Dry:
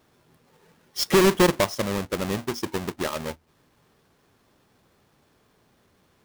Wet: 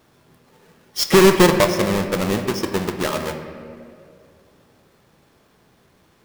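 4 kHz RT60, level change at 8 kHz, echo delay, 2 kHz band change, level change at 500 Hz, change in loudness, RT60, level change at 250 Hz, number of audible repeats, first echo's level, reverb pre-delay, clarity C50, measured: 1.3 s, +5.5 dB, no echo audible, +6.0 dB, +6.5 dB, +6.0 dB, 2.4 s, +6.5 dB, no echo audible, no echo audible, 5 ms, 7.5 dB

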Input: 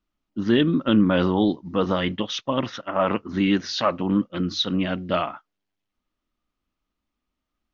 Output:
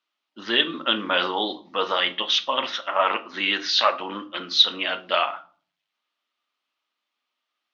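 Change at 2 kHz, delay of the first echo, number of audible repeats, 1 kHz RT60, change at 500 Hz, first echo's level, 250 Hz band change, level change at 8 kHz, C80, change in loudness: +6.0 dB, no echo audible, no echo audible, 0.40 s, −3.0 dB, no echo audible, −13.5 dB, can't be measured, 22.0 dB, +0.5 dB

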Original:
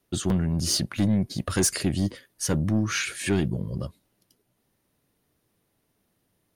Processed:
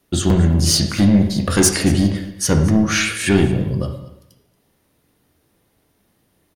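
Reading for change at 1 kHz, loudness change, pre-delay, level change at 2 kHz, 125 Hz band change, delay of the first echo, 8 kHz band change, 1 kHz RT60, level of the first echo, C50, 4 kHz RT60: +10.0 dB, +9.5 dB, 5 ms, +9.5 dB, +9.5 dB, 230 ms, +8.5 dB, 0.85 s, −19.5 dB, 6.5 dB, 0.75 s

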